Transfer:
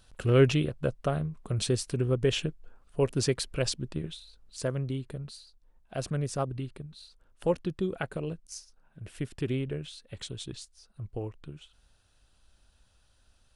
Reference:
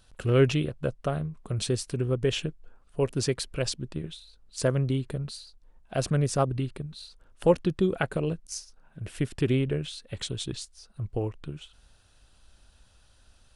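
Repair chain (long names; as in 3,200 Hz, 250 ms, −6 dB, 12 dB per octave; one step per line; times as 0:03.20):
level 0 dB, from 0:04.57 +6 dB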